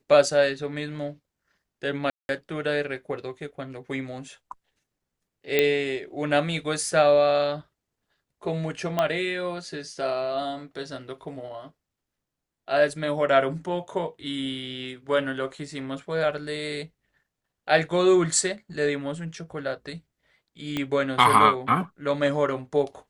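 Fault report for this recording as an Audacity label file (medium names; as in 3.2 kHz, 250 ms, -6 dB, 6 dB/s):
2.100000	2.290000	dropout 191 ms
5.590000	5.590000	pop -7 dBFS
8.990000	8.990000	pop -11 dBFS
20.770000	20.770000	pop -14 dBFS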